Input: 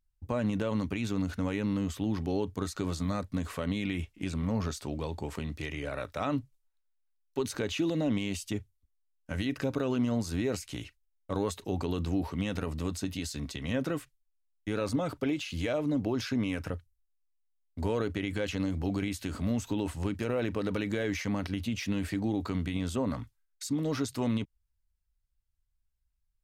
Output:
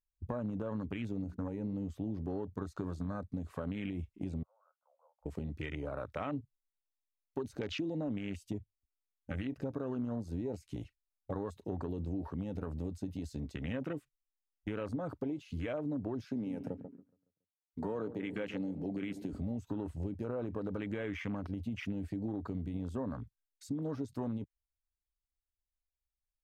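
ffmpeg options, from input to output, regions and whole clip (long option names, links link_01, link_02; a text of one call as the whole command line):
ffmpeg -i in.wav -filter_complex "[0:a]asettb=1/sr,asplit=3[link_01][link_02][link_03];[link_01]atrim=end=1.244[link_04];[link_02]atrim=start=1.24:end=1.74,asetpts=PTS-STARTPTS,afade=type=in:duration=0.004:curve=qsin,afade=type=out:start_time=0.496:duration=0.004:curve=qsin,agate=range=-33dB:threshold=-35dB:ratio=3:release=100:detection=peak,equalizer=frequency=3200:width_type=o:width=0.51:gain=-7,bandreject=frequency=60:width_type=h:width=6,bandreject=frequency=120:width_type=h:width=6,bandreject=frequency=180:width_type=h:width=6,bandreject=frequency=240:width_type=h:width=6,bandreject=frequency=300:width_type=h:width=6,bandreject=frequency=360:width_type=h:width=6,bandreject=frequency=420:width_type=h:width=6,bandreject=frequency=480:width_type=h:width=6[link_05];[link_03]atrim=start=1.736[link_06];[link_04][link_05]acrossfade=duration=0.004:curve1=hsin:curve2=qsin[link_07];[link_07][link_06]acrossfade=duration=0.004:curve1=qsin:curve2=hsin,asettb=1/sr,asplit=3[link_08][link_09][link_10];[link_08]atrim=end=4.434[link_11];[link_09]atrim=start=4.43:end=5.26,asetpts=PTS-STARTPTS,afade=type=in:duration=0.004:curve=qsin,afade=type=out:start_time=0.826:duration=0.004:curve=qsin,agate=range=-18dB:threshold=-38dB:ratio=16:release=100:detection=peak,acompressor=threshold=-48dB:ratio=2.5:attack=3.2:release=140:knee=1:detection=peak,asuperpass=centerf=870:order=20:qfactor=0.89[link_12];[link_10]atrim=start=5.256[link_13];[link_11][link_12]acrossfade=duration=0.004:curve1=hsin:curve2=qsin[link_14];[link_14][link_13]acrossfade=duration=0.004:curve1=qsin:curve2=hsin,asettb=1/sr,asplit=3[link_15][link_16][link_17];[link_15]atrim=end=16.224[link_18];[link_16]atrim=start=16.22:end=19.33,asetpts=PTS-STARTPTS,afade=type=in:duration=0.004:curve=qsin,afade=type=out:start_time=3.106:duration=0.004:curve=qsin,highpass=frequency=130:width=0.5412,highpass=frequency=130:width=1.3066,asplit=2[link_19][link_20];[link_20]adelay=140,lowpass=frequency=1200:poles=1,volume=-12dB,asplit=2[link_21][link_22];[link_22]adelay=140,lowpass=frequency=1200:poles=1,volume=0.5,asplit=2[link_23][link_24];[link_24]adelay=140,lowpass=frequency=1200:poles=1,volume=0.5,asplit=2[link_25][link_26];[link_26]adelay=140,lowpass=frequency=1200:poles=1,volume=0.5,asplit=2[link_27][link_28];[link_28]adelay=140,lowpass=frequency=1200:poles=1,volume=0.5[link_29];[link_19][link_21][link_23][link_25][link_27][link_29]amix=inputs=6:normalize=0,atrim=end_sample=137151[link_30];[link_17]atrim=start=19.326[link_31];[link_18][link_30]acrossfade=duration=0.004:curve1=hsin:curve2=qsin[link_32];[link_32][link_31]acrossfade=duration=0.004:curve1=qsin:curve2=hsin,afwtdn=0.0126,acompressor=threshold=-38dB:ratio=3,volume=1.5dB" out.wav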